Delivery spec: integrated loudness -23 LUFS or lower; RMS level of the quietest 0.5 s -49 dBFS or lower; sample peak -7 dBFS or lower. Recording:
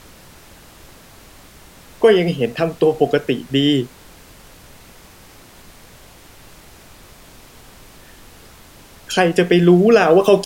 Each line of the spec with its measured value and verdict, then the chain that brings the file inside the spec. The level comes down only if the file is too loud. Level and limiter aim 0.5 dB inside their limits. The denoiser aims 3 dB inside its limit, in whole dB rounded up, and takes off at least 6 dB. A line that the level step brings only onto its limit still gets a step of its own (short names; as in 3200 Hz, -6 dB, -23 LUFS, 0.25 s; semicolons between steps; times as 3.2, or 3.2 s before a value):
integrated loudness -15.5 LUFS: fail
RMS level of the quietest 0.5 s -44 dBFS: fail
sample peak -2.0 dBFS: fail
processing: gain -8 dB